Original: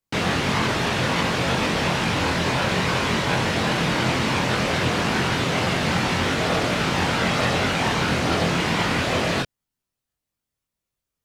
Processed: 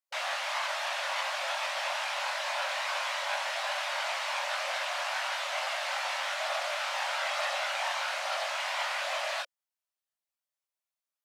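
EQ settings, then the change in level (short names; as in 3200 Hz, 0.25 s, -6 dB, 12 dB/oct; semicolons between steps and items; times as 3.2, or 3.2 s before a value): brick-wall FIR high-pass 540 Hz; -8.0 dB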